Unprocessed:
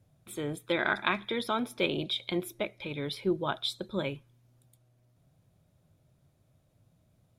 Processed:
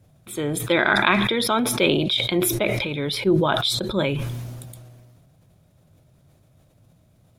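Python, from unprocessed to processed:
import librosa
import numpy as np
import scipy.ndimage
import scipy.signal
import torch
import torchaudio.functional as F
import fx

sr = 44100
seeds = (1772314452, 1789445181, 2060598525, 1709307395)

y = fx.sustainer(x, sr, db_per_s=28.0)
y = F.gain(torch.from_numpy(y), 8.5).numpy()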